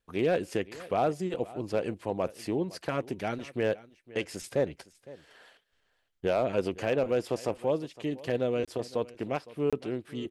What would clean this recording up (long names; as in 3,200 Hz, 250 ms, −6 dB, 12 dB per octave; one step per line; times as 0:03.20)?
clipped peaks rebuilt −17.5 dBFS
repair the gap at 0:08.65/0:09.70, 26 ms
echo removal 510 ms −19.5 dB